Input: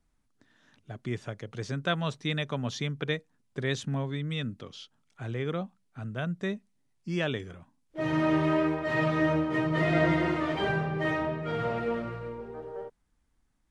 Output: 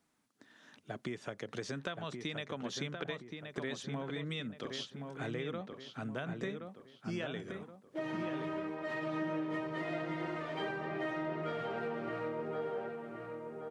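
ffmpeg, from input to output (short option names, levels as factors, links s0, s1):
-filter_complex "[0:a]highpass=210,acompressor=threshold=0.01:ratio=12,asplit=2[s0][s1];[s1]adelay=1073,lowpass=f=2400:p=1,volume=0.562,asplit=2[s2][s3];[s3]adelay=1073,lowpass=f=2400:p=1,volume=0.42,asplit=2[s4][s5];[s5]adelay=1073,lowpass=f=2400:p=1,volume=0.42,asplit=2[s6][s7];[s7]adelay=1073,lowpass=f=2400:p=1,volume=0.42,asplit=2[s8][s9];[s9]adelay=1073,lowpass=f=2400:p=1,volume=0.42[s10];[s2][s4][s6][s8][s10]amix=inputs=5:normalize=0[s11];[s0][s11]amix=inputs=2:normalize=0,volume=1.58"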